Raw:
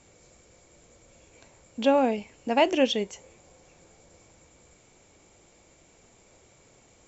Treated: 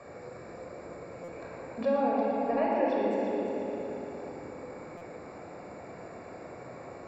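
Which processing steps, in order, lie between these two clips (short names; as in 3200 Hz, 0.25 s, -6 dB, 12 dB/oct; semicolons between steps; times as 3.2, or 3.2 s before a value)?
HPF 430 Hz 6 dB/oct; compressor 2:1, threshold -43 dBFS, peak gain reduction 14 dB; running mean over 14 samples; multi-head echo 0.116 s, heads first and third, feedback 57%, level -9 dB; shoebox room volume 3700 m³, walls mixed, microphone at 5.9 m; stuck buffer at 1.24/4.97, samples 256, times 6; three-band squash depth 40%; gain +4 dB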